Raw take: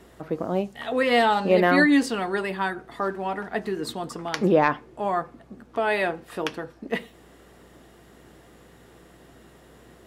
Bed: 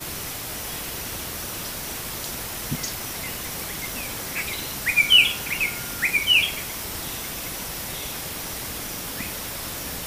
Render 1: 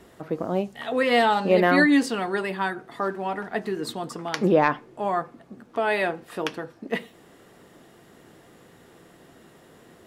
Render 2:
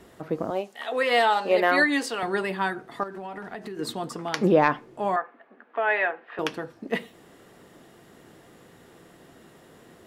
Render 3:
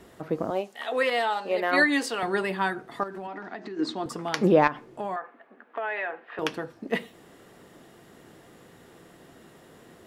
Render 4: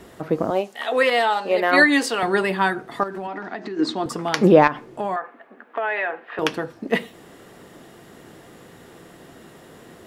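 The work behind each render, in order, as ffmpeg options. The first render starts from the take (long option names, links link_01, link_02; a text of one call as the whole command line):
ffmpeg -i in.wav -af "bandreject=frequency=60:width_type=h:width=4,bandreject=frequency=120:width_type=h:width=4" out.wav
ffmpeg -i in.wav -filter_complex "[0:a]asettb=1/sr,asplit=3[link_01][link_02][link_03];[link_01]atrim=end=0.504[link_04];[link_02]atrim=start=0.5:end=2.23,asetpts=PTS-STARTPTS,afade=type=in:duration=0.004:curve=qsin,afade=type=out:start_time=1.726:duration=0.004:curve=qsin,highpass=440[link_05];[link_03]atrim=start=2.226[link_06];[link_04][link_05]acrossfade=duration=0.004:curve1=hsin:curve2=qsin[link_07];[link_07][link_06]acrossfade=duration=0.004:curve1=qsin:curve2=hsin,asettb=1/sr,asplit=3[link_08][link_09][link_10];[link_08]atrim=end=3.034[link_11];[link_09]atrim=start=3.03:end=3.79,asetpts=PTS-STARTPTS,afade=type=in:duration=0.004:curve=qsin,afade=type=out:start_time=0.756:duration=0.004:curve=qsin,acompressor=threshold=-32dB:ratio=12:attack=3.2:release=140:knee=1:detection=peak[link_12];[link_10]atrim=start=3.786[link_13];[link_11][link_12]acrossfade=duration=0.004:curve1=hsin:curve2=qsin[link_14];[link_14][link_13]acrossfade=duration=0.004:curve1=qsin:curve2=hsin,asettb=1/sr,asplit=3[link_15][link_16][link_17];[link_15]atrim=end=5.164[link_18];[link_16]atrim=start=5.16:end=6.39,asetpts=PTS-STARTPTS,afade=type=in:duration=0.004:curve=qsin,afade=type=out:start_time=1.226:duration=0.004:curve=qsin,highpass=frequency=330:width=0.5412,highpass=frequency=330:width=1.3066,equalizer=frequency=340:width_type=q:width=4:gain=-10,equalizer=frequency=520:width_type=q:width=4:gain=-4,equalizer=frequency=1700:width_type=q:width=4:gain=6,lowpass=frequency=2800:width=0.5412,lowpass=frequency=2800:width=1.3066[link_19];[link_17]atrim=start=6.386[link_20];[link_18][link_19]acrossfade=duration=0.004:curve1=hsin:curve2=qsin[link_21];[link_21][link_20]acrossfade=duration=0.004:curve1=qsin:curve2=hsin" out.wav
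ffmpeg -i in.wav -filter_complex "[0:a]asettb=1/sr,asplit=3[link_01][link_02][link_03];[link_01]atrim=end=3.274[link_04];[link_02]atrim=start=3.27:end=4.06,asetpts=PTS-STARTPTS,afade=type=in:duration=0.004:curve=qsin,afade=type=out:start_time=0.786:duration=0.004:curve=qsin,highpass=220,equalizer=frequency=310:width_type=q:width=4:gain=9,equalizer=frequency=450:width_type=q:width=4:gain=-6,equalizer=frequency=3000:width_type=q:width=4:gain=-4,lowpass=frequency=6200:width=0.5412,lowpass=frequency=6200:width=1.3066[link_05];[link_03]atrim=start=4.056[link_06];[link_04][link_05]acrossfade=duration=0.004:curve1=hsin:curve2=qsin[link_07];[link_07][link_06]acrossfade=duration=0.004:curve1=qsin:curve2=hsin,asettb=1/sr,asplit=3[link_08][link_09][link_10];[link_08]atrim=end=4.674[link_11];[link_09]atrim=start=4.67:end=6.42,asetpts=PTS-STARTPTS,afade=type=in:duration=0.004:curve=qsin,afade=type=out:start_time=1.746:duration=0.004:curve=qsin,acompressor=threshold=-27dB:ratio=5:attack=3.2:release=140:knee=1:detection=peak[link_12];[link_10]atrim=start=6.416[link_13];[link_11][link_12]acrossfade=duration=0.004:curve1=hsin:curve2=qsin[link_14];[link_14][link_13]acrossfade=duration=0.004:curve1=qsin:curve2=hsin,asplit=3[link_15][link_16][link_17];[link_15]atrim=end=1.102[link_18];[link_16]atrim=start=1.098:end=1.732,asetpts=PTS-STARTPTS,volume=-5.5dB[link_19];[link_17]atrim=start=1.728[link_20];[link_18][link_19]acrossfade=duration=0.004:curve1=hsin:curve2=hsin[link_21];[link_21][link_20]acrossfade=duration=0.004:curve1=hsin:curve2=hsin" out.wav
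ffmpeg -i in.wav -af "volume=6.5dB,alimiter=limit=-2dB:level=0:latency=1" out.wav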